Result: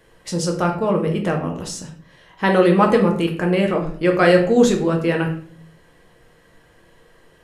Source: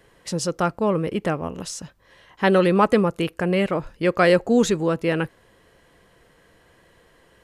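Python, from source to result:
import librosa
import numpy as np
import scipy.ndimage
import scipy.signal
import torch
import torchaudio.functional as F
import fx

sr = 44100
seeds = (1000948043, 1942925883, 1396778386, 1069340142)

y = fx.room_shoebox(x, sr, seeds[0], volume_m3=62.0, walls='mixed', distance_m=0.6)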